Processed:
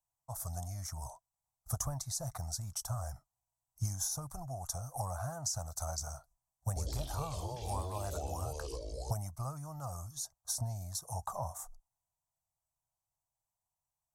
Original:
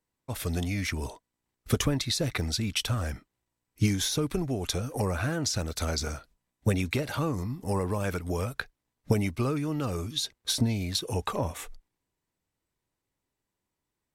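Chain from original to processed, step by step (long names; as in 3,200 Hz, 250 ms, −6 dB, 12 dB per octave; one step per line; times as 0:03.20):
drawn EQ curve 140 Hz 0 dB, 220 Hz −17 dB, 420 Hz −23 dB, 690 Hz +8 dB, 1,200 Hz 0 dB, 2,500 Hz −27 dB, 3,700 Hz −18 dB, 6,100 Hz +6 dB
0:06.67–0:09.11: delay with pitch and tempo change per echo 93 ms, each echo −5 semitones, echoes 3
level −8.5 dB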